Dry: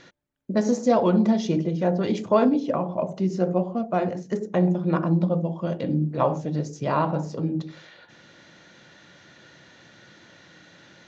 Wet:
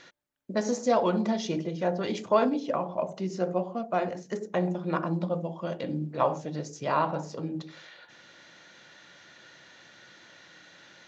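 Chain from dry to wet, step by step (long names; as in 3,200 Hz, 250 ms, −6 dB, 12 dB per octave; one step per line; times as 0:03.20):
low-shelf EQ 390 Hz −11 dB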